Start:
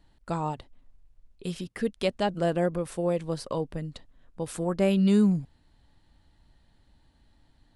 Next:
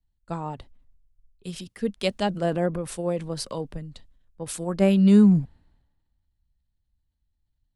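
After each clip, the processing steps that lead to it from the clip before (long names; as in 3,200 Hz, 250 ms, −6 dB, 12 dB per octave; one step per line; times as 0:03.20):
parametric band 200 Hz +3.5 dB 0.29 octaves
transient designer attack +2 dB, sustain +6 dB
multiband upward and downward expander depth 70%
level −1.5 dB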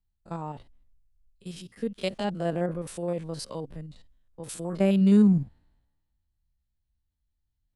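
spectrum averaged block by block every 50 ms
level −3 dB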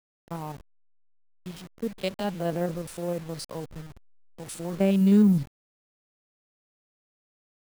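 hold until the input has moved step −40.5 dBFS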